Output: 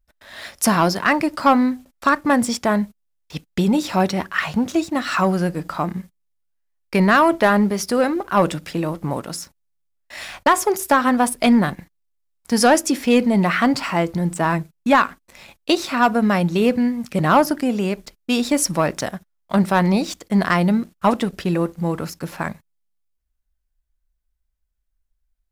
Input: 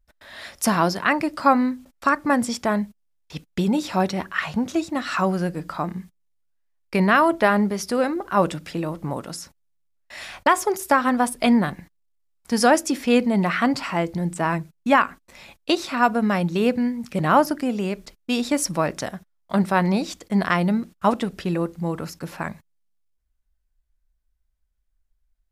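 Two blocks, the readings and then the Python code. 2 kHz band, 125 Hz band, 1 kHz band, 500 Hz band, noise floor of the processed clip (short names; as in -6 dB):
+2.5 dB, +3.5 dB, +2.5 dB, +3.0 dB, -72 dBFS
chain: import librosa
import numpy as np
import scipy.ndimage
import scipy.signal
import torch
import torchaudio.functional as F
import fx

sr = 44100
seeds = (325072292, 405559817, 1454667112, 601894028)

y = fx.leveller(x, sr, passes=1)
y = fx.high_shelf(y, sr, hz=12000.0, db=4.0)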